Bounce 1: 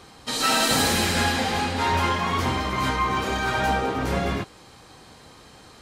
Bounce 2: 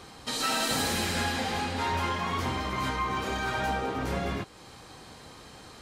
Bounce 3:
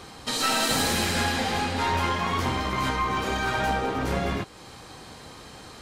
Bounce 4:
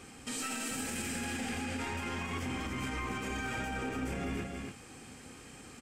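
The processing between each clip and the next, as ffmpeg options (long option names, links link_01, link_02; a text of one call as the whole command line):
ffmpeg -i in.wav -af "acompressor=threshold=-38dB:ratio=1.5" out.wav
ffmpeg -i in.wav -af "aeval=exprs='0.178*(cos(1*acos(clip(val(0)/0.178,-1,1)))-cos(1*PI/2))+0.0355*(cos(2*acos(clip(val(0)/0.178,-1,1)))-cos(2*PI/2))':channel_layout=same,volume=4dB" out.wav
ffmpeg -i in.wav -af "equalizer=frequency=250:width_type=o:width=0.33:gain=8,equalizer=frequency=630:width_type=o:width=0.33:gain=-6,equalizer=frequency=1000:width_type=o:width=0.33:gain=-9,equalizer=frequency=2500:width_type=o:width=0.33:gain=6,equalizer=frequency=4000:width_type=o:width=0.33:gain=-11,equalizer=frequency=8000:width_type=o:width=0.33:gain=9,aecho=1:1:280:0.422,alimiter=limit=-20dB:level=0:latency=1:release=57,volume=-7.5dB" out.wav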